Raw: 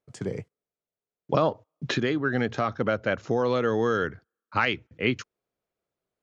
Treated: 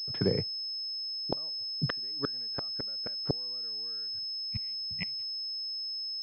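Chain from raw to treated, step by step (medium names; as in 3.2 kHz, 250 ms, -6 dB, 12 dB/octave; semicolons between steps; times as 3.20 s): inverted gate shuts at -17 dBFS, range -37 dB; spectral selection erased 4.18–5.23 s, 230–1900 Hz; class-D stage that switches slowly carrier 5.2 kHz; trim +3.5 dB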